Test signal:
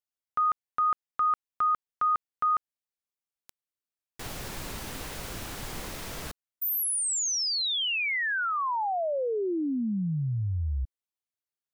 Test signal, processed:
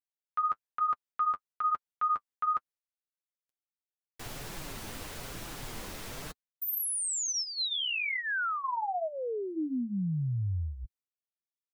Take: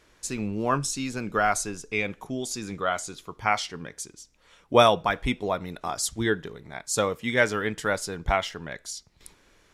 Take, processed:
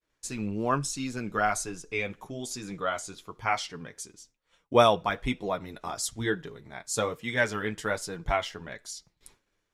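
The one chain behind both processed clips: expander -49 dBFS; flange 1.1 Hz, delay 5.7 ms, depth 4.7 ms, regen -28%

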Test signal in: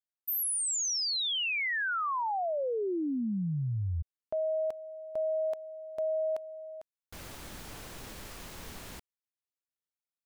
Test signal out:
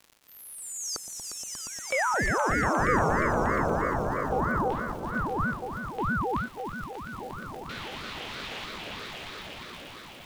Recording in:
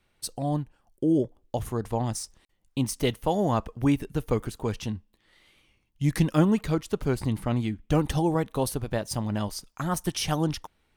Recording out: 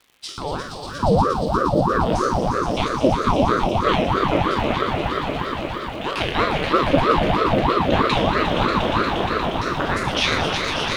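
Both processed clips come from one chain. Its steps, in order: spectral sustain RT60 0.64 s; high-pass 320 Hz 12 dB/octave; treble shelf 7.4 kHz +7 dB; LFO low-pass square 0.52 Hz 450–3100 Hz; crackle 250 per s -45 dBFS; echo with a slow build-up 118 ms, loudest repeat 5, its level -7.5 dB; ring modulator with a swept carrier 500 Hz, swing 75%, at 3.1 Hz; trim +6 dB

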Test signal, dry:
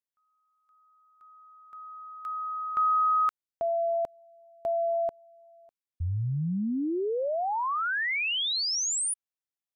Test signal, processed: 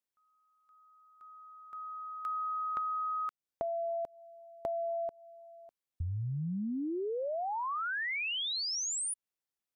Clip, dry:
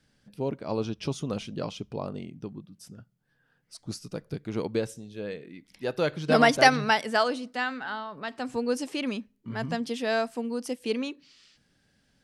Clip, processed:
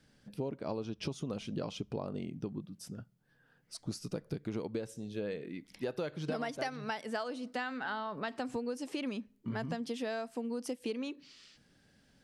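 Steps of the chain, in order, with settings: peaking EQ 360 Hz +3 dB 2.8 oct; compression 16:1, threshold -33 dBFS

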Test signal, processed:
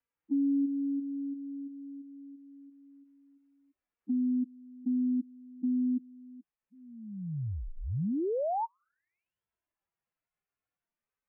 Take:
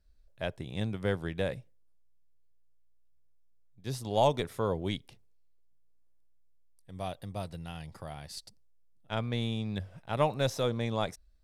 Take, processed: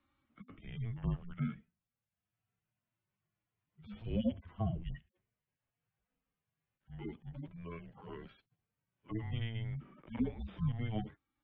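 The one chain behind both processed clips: harmonic-percussive separation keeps harmonic; mistuned SSB -340 Hz 220–3200 Hz; three bands compressed up and down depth 40%

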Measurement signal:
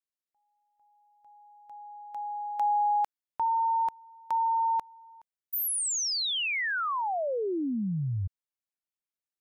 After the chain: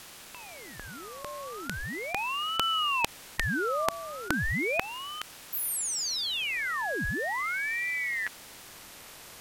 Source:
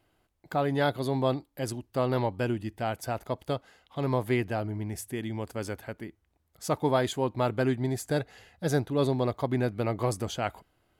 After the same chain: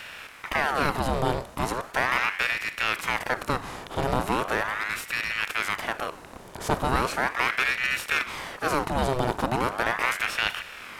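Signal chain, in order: spectral levelling over time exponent 0.4; ring modulator with a swept carrier 1.2 kHz, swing 80%, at 0.38 Hz

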